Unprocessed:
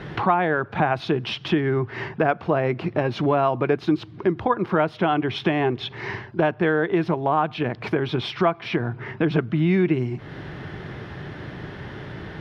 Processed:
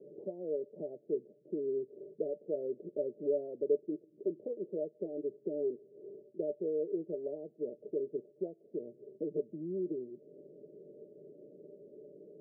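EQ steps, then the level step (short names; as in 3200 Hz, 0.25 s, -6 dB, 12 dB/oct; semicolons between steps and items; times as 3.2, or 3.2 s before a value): HPF 300 Hz 24 dB/oct; rippled Chebyshev low-pass 610 Hz, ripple 9 dB; -6.0 dB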